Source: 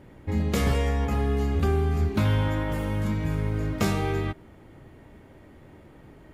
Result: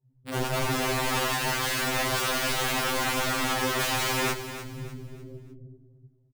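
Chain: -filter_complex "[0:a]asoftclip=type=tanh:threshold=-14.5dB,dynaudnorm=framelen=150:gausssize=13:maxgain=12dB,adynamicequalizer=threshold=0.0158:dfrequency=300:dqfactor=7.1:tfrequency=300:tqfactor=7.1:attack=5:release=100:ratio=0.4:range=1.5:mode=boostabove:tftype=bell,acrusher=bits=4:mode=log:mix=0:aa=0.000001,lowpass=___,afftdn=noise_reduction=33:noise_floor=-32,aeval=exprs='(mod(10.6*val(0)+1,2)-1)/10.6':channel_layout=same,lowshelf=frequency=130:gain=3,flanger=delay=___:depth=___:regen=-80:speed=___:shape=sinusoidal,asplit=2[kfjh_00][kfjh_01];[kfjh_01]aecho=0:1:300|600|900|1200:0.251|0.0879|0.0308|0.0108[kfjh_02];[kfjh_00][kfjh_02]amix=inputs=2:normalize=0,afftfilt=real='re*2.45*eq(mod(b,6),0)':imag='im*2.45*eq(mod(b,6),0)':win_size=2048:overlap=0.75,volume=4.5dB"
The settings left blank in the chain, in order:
1100, 7.5, 3.5, 0.45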